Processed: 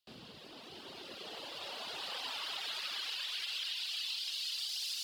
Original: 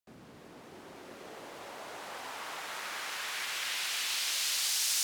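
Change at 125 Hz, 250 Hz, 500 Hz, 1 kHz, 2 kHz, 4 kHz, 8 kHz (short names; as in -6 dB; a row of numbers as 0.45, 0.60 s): n/a, -4.0 dB, -4.5 dB, -6.5 dB, -7.0 dB, -1.0 dB, -14.0 dB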